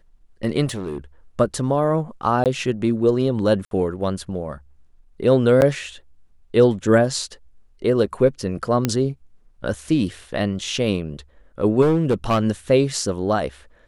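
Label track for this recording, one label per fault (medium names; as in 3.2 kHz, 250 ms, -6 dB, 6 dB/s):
0.650000	0.980000	clipped -23.5 dBFS
2.440000	2.460000	dropout 18 ms
3.650000	3.710000	dropout 62 ms
5.610000	5.620000	dropout 9.5 ms
8.850000	8.850000	pop -5 dBFS
11.810000	12.430000	clipped -13.5 dBFS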